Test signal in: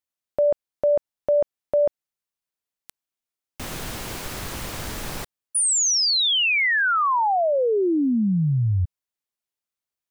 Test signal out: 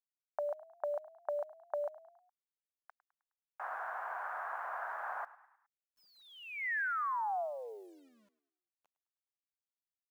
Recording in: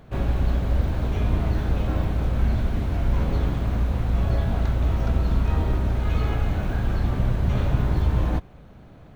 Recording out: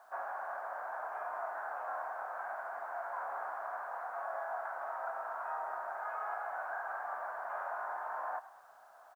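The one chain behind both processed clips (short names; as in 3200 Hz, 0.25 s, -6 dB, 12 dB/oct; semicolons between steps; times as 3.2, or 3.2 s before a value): elliptic band-pass 690–1600 Hz, stop band 80 dB; compressor 12:1, threshold -35 dBFS; bit-crush 12-bit; on a send: frequency-shifting echo 0.104 s, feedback 49%, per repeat +35 Hz, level -18 dB; on the sum: gain +1 dB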